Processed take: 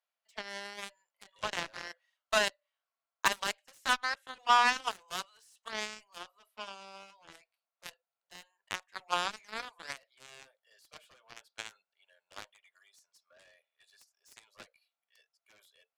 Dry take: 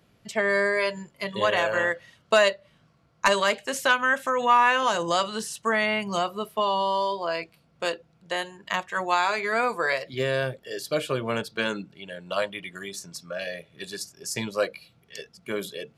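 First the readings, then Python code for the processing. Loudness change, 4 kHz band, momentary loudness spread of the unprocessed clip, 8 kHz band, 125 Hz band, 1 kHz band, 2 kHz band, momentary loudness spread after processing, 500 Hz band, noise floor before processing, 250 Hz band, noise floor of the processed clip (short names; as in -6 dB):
-8.0 dB, -7.0 dB, 15 LU, -7.0 dB, -21.5 dB, -9.5 dB, -10.5 dB, 21 LU, -18.5 dB, -63 dBFS, -18.5 dB, under -85 dBFS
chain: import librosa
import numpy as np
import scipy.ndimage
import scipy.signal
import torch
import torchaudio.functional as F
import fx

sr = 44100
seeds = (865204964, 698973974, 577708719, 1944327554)

y = scipy.signal.sosfilt(scipy.signal.cheby2(4, 40, 320.0, 'highpass', fs=sr, output='sos'), x)
y = fx.cheby_harmonics(y, sr, harmonics=(7,), levels_db=(-16,), full_scale_db=-6.0)
y = y * librosa.db_to_amplitude(-5.0)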